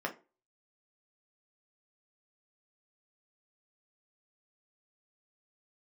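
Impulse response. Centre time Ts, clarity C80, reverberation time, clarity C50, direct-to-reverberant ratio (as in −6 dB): 10 ms, 22.0 dB, 0.30 s, 15.0 dB, 0.5 dB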